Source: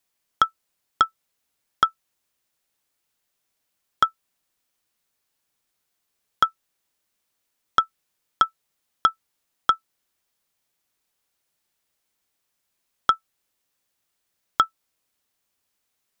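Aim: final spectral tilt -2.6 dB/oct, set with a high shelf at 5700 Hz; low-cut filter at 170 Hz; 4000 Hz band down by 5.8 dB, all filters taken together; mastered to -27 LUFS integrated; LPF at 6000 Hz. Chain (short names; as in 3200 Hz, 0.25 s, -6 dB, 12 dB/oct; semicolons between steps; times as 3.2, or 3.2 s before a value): HPF 170 Hz; LPF 6000 Hz; bell 4000 Hz -6 dB; high shelf 5700 Hz -3.5 dB; gain -1 dB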